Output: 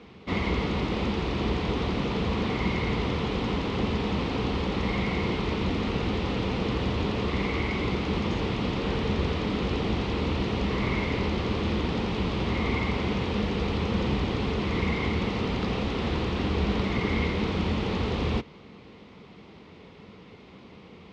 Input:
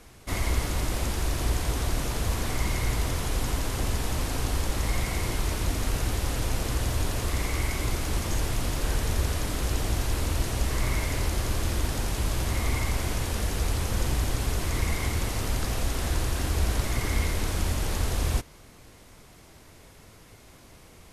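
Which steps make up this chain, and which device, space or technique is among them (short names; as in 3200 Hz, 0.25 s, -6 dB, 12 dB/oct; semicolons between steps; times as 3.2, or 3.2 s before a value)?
guitar cabinet (speaker cabinet 98–3700 Hz, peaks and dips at 110 Hz -5 dB, 200 Hz +9 dB, 440 Hz +5 dB, 640 Hz -6 dB, 1600 Hz -9 dB); gain +4.5 dB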